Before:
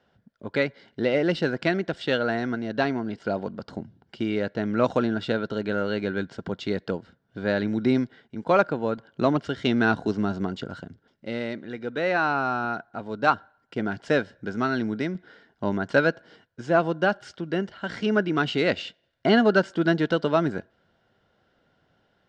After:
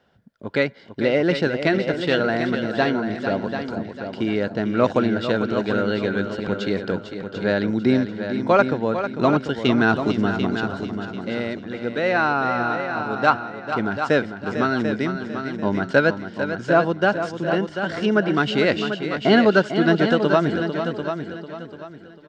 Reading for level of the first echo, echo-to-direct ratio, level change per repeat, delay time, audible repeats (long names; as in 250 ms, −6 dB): −9.5 dB, −5.5 dB, repeats not evenly spaced, 448 ms, 6